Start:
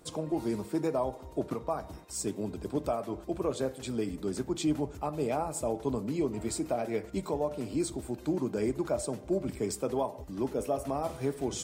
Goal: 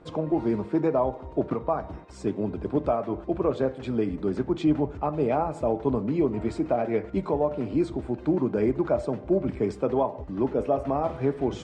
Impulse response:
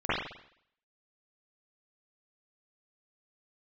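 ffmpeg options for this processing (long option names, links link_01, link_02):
-af "lowpass=2200,volume=6.5dB"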